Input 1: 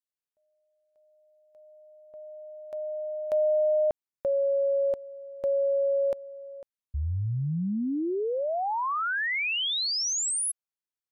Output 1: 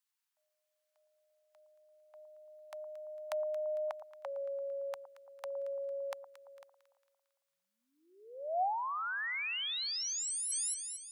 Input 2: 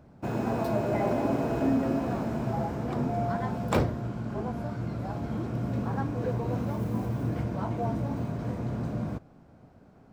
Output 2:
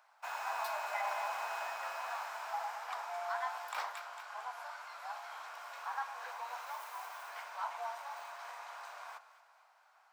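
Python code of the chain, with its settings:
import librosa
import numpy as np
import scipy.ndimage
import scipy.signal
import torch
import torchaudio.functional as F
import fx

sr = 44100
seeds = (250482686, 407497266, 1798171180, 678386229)

y = scipy.signal.sosfilt(scipy.signal.butter(6, 850.0, 'highpass', fs=sr, output='sos'), x)
y = fx.echo_alternate(y, sr, ms=113, hz=1100.0, feedback_pct=67, wet_db=-11)
y = fx.over_compress(y, sr, threshold_db=-36.0, ratio=-1.0)
y = y * librosa.db_to_amplitude(1.0)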